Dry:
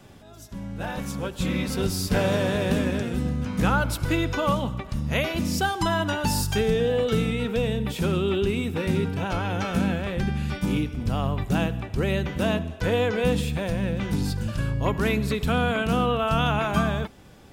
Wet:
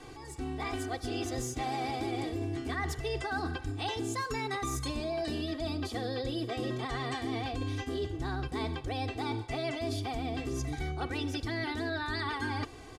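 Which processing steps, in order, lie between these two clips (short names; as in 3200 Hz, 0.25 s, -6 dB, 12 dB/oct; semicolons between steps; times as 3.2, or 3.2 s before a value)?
LPF 7400 Hz 24 dB/oct; comb 3.5 ms, depth 97%; reverse; compressor 6:1, threshold -31 dBFS, peak gain reduction 16 dB; reverse; speed mistake 33 rpm record played at 45 rpm; gain -1 dB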